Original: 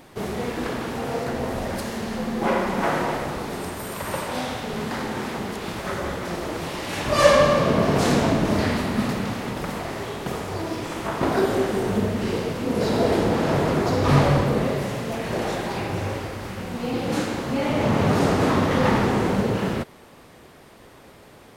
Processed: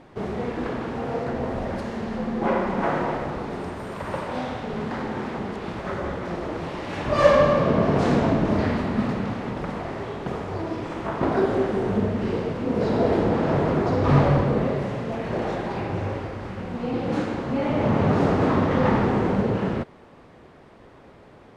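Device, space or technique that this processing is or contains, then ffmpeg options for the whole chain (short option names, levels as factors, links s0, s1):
through cloth: -af "lowpass=7900,highshelf=f=3200:g=-14.5"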